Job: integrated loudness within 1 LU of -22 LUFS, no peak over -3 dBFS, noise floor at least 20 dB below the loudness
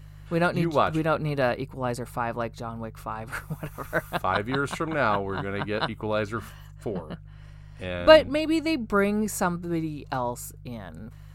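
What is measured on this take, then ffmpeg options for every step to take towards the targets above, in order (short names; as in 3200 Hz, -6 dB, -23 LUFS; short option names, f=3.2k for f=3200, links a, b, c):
hum 50 Hz; harmonics up to 150 Hz; hum level -42 dBFS; loudness -26.5 LUFS; peak -3.0 dBFS; loudness target -22.0 LUFS
-> -af "bandreject=f=50:t=h:w=4,bandreject=f=100:t=h:w=4,bandreject=f=150:t=h:w=4"
-af "volume=4.5dB,alimiter=limit=-3dB:level=0:latency=1"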